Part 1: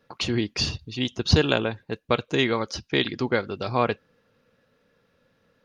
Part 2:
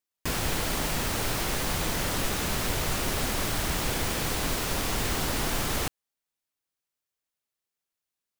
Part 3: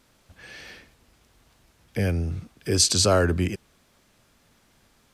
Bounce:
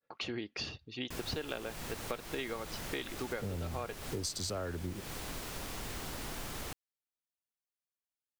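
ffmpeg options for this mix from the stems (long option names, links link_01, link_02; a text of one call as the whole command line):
ffmpeg -i stem1.wav -i stem2.wav -i stem3.wav -filter_complex "[0:a]bandreject=frequency=1000:width=9.3,agate=range=-33dB:threshold=-57dB:ratio=3:detection=peak,bass=frequency=250:gain=-10,treble=frequency=4000:gain=-9,volume=-6dB[link_01];[1:a]adelay=850,volume=-12.5dB[link_02];[2:a]afwtdn=0.0251,adelay=1450,volume=-5.5dB[link_03];[link_01][link_02][link_03]amix=inputs=3:normalize=0,acompressor=threshold=-35dB:ratio=6" out.wav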